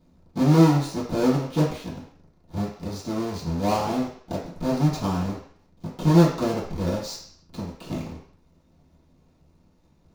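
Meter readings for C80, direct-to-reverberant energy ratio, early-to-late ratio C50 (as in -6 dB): 9.0 dB, -11.5 dB, 5.5 dB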